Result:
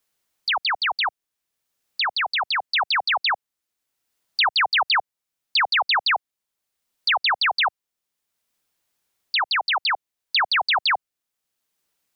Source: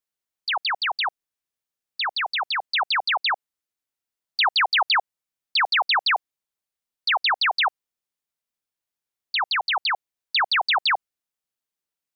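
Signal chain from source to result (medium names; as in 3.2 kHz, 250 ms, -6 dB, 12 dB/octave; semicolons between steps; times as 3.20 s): three bands compressed up and down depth 40%; trim +1 dB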